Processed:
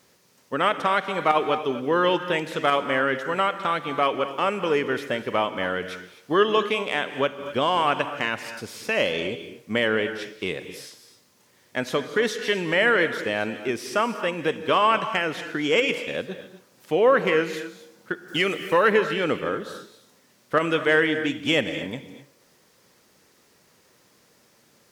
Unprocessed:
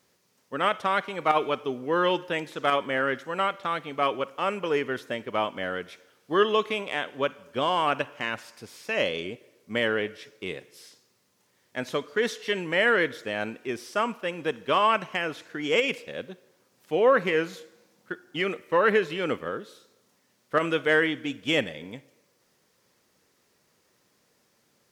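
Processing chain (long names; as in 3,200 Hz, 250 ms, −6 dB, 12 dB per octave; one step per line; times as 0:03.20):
0:18.28–0:18.88: high-shelf EQ 4,100 Hz +11.5 dB
in parallel at +3 dB: downward compressor, threshold −33 dBFS, peak gain reduction 16.5 dB
on the sum: reverb whose tail is shaped and stops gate 280 ms rising, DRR 10.5 dB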